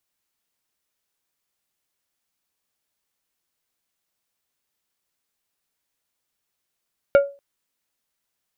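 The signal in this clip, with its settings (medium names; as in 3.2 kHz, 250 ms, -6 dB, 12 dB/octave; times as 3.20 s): glass hit plate, length 0.24 s, lowest mode 561 Hz, decay 0.31 s, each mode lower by 9.5 dB, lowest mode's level -7 dB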